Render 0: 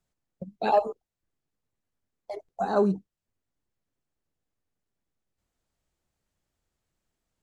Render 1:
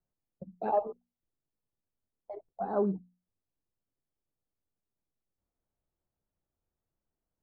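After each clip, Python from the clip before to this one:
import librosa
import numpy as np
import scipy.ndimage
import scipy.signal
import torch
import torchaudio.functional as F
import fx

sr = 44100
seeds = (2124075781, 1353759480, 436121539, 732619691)

y = scipy.signal.sosfilt(scipy.signal.butter(2, 1100.0, 'lowpass', fs=sr, output='sos'), x)
y = fx.hum_notches(y, sr, base_hz=60, count=4)
y = y * librosa.db_to_amplitude(-5.5)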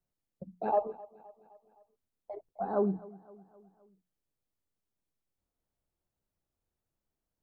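y = fx.echo_feedback(x, sr, ms=259, feedback_pct=55, wet_db=-21.0)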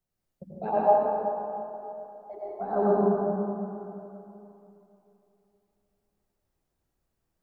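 y = fx.rev_plate(x, sr, seeds[0], rt60_s=3.0, hf_ratio=0.45, predelay_ms=75, drr_db=-7.0)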